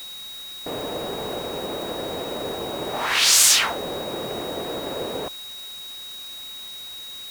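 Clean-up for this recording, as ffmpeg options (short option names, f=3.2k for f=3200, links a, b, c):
-af "adeclick=t=4,bandreject=f=3.8k:w=30,afwtdn=0.0063"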